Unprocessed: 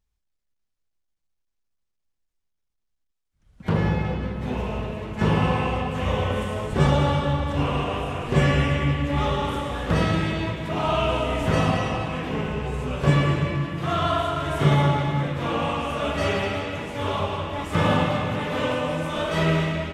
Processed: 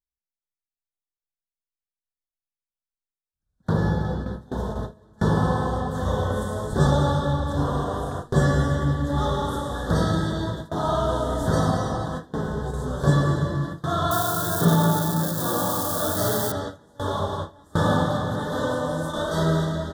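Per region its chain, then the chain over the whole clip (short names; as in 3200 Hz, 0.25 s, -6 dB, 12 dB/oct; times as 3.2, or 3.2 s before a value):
14.11–16.52 switching spikes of -22 dBFS + frequency shift +22 Hz
whole clip: elliptic band-stop 1700–3500 Hz, stop band 80 dB; high shelf 6200 Hz +7 dB; gate with hold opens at -19 dBFS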